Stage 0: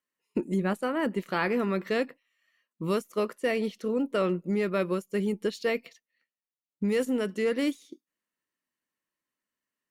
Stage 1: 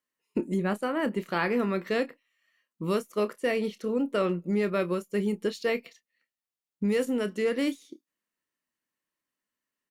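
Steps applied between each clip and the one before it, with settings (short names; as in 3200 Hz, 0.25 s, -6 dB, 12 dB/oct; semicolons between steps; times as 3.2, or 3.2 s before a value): doubler 29 ms -13 dB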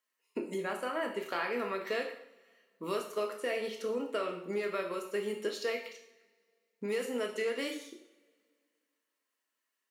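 HPF 450 Hz 12 dB/oct; compressor 3:1, threshold -35 dBFS, peak gain reduction 9 dB; two-slope reverb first 0.63 s, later 2.3 s, from -24 dB, DRR 2 dB; gain +1 dB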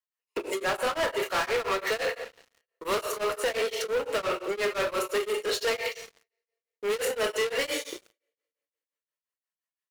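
inverse Chebyshev high-pass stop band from 160 Hz, stop band 50 dB; sample leveller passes 5; beating tremolo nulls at 5.8 Hz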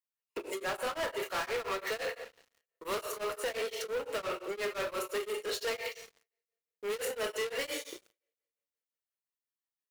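high shelf 12000 Hz +5.5 dB; gain -7 dB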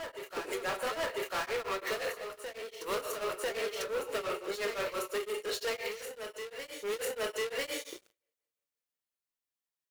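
reverse echo 0.996 s -7.5 dB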